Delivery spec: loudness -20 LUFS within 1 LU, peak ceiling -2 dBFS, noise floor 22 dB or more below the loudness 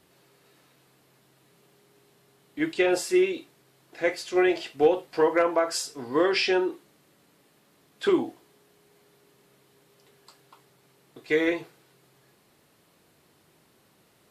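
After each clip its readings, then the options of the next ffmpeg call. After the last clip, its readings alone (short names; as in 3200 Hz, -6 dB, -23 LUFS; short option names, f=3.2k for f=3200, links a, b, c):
loudness -25.5 LUFS; peak -9.0 dBFS; loudness target -20.0 LUFS
-> -af "volume=5.5dB"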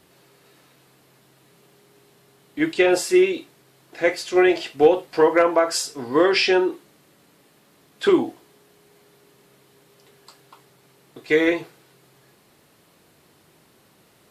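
loudness -20.0 LUFS; peak -3.5 dBFS; noise floor -58 dBFS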